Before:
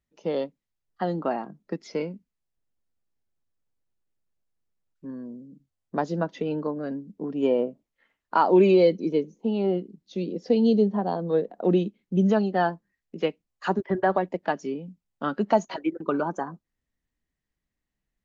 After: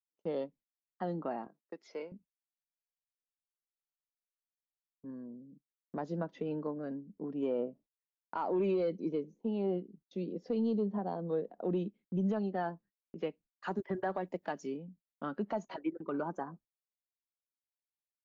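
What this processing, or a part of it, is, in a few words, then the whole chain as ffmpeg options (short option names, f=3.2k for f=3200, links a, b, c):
soft clipper into limiter: -filter_complex "[0:a]asoftclip=type=tanh:threshold=-9dB,alimiter=limit=-17dB:level=0:latency=1:release=94,asettb=1/sr,asplit=3[a][b][c];[a]atrim=end=1.474[d];[b]atrim=start=1.47:end=2.12,asetpts=PTS-STARTPTS,afade=t=in:d=0.004:c=qsin,afade=t=out:st=0.646:d=0.004:c=qsin,highpass=490[e];[c]atrim=start=2.116[f];[d][e]acrossfade=d=0.004:c1=hsin:c2=qsin[g];[g][f]acrossfade=d=0.004:c1=qsin:c2=hsin,asettb=1/sr,asplit=3[h][i][j];[h]atrim=end=13.684[k];[i]atrim=start=13.68:end=14.77,asetpts=PTS-STARTPTS,afade=t=in:d=0.004:c=qsin,afade=t=out:st=1.086:d=0.004:c=qsin,aemphasis=mode=production:type=75kf[l];[j]atrim=start=14.766[m];[k][l]acrossfade=d=0.004:c1=hsin:c2=qsin[n];[n][m]acrossfade=d=0.004:c1=qsin:c2=hsin,agate=range=-33dB:threshold=-50dB:ratio=16:detection=peak,highshelf=f=2.8k:g=-9,volume=-8dB"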